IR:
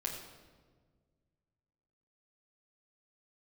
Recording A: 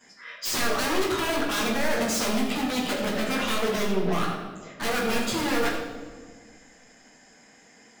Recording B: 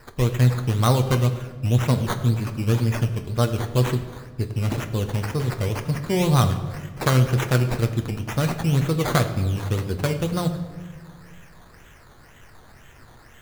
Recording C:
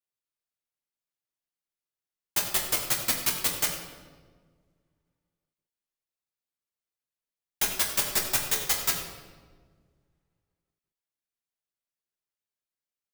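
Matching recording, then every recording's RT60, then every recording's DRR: C; 1.6, 1.6, 1.6 seconds; −10.5, 6.0, −2.5 decibels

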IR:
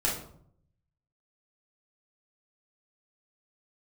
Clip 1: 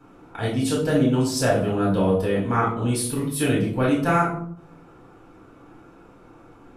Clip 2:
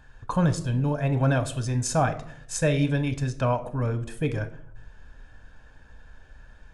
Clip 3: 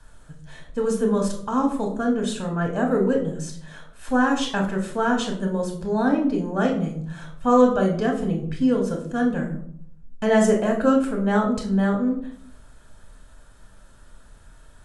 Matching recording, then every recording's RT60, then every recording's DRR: 1; 0.65, 0.65, 0.65 seconds; −5.5, 8.5, −0.5 decibels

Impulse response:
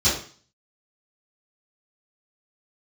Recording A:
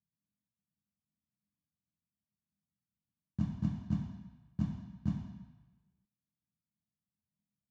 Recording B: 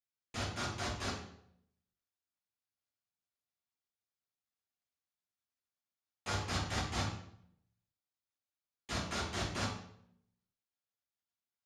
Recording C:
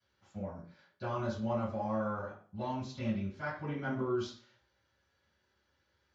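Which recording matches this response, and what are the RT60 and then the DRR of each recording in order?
C; 1.2, 0.65, 0.45 seconds; −13.5, −7.0, −14.0 decibels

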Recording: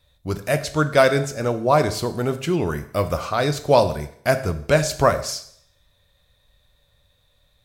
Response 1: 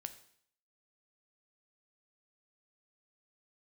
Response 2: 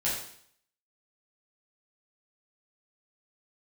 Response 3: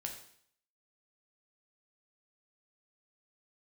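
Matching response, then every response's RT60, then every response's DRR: 1; 0.60, 0.60, 0.60 seconds; 9.0, −8.0, 2.0 decibels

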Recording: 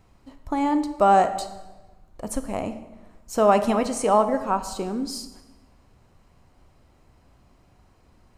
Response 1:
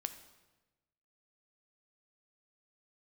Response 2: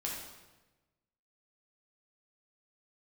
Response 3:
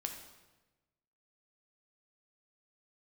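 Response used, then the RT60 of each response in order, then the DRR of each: 1; 1.1, 1.1, 1.1 seconds; 9.0, −3.5, 3.5 decibels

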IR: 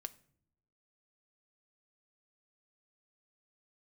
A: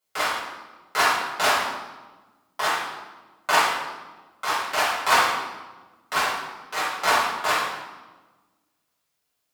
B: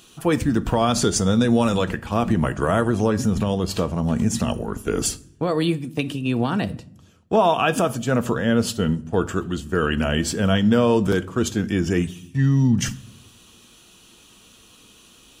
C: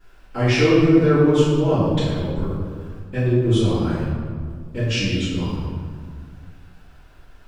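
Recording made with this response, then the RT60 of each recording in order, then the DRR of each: B; 1.2 s, non-exponential decay, 1.9 s; −9.5, 10.5, −17.0 decibels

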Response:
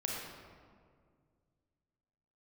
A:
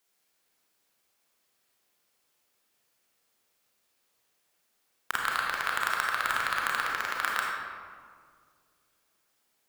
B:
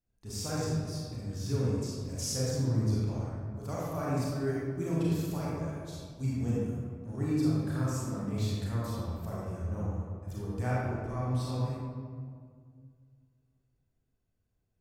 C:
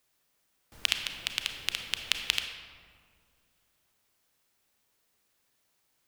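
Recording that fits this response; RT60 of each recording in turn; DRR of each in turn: A; 2.0, 2.0, 2.1 seconds; −2.5, −7.5, 5.0 decibels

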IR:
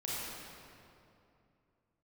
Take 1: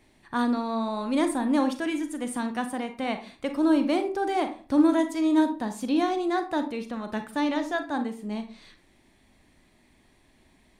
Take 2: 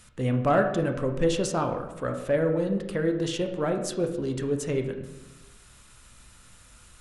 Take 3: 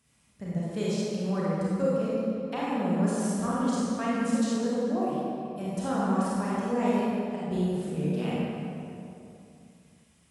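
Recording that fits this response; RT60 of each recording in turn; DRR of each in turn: 3; 0.40, 1.0, 2.7 seconds; 7.5, 4.5, −8.0 decibels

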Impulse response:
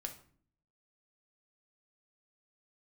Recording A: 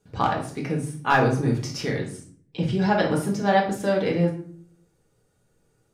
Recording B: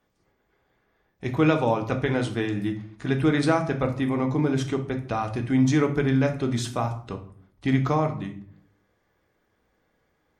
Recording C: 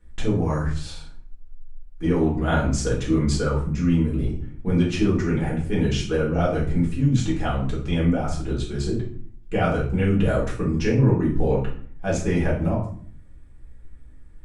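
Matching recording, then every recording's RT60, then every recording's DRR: B; 0.50, 0.50, 0.50 seconds; −2.0, 4.0, −7.0 decibels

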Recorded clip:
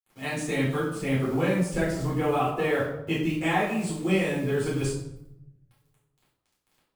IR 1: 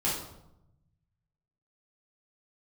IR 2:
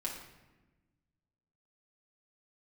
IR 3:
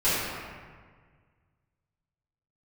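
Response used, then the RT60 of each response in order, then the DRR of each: 1; 0.85, 1.1, 1.6 seconds; −8.0, −4.0, −15.0 decibels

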